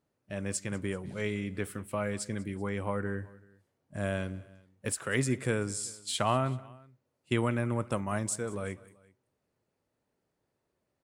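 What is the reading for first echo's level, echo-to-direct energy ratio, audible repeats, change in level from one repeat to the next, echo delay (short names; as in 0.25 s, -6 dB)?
-21.0 dB, -20.0 dB, 2, -5.0 dB, 0.191 s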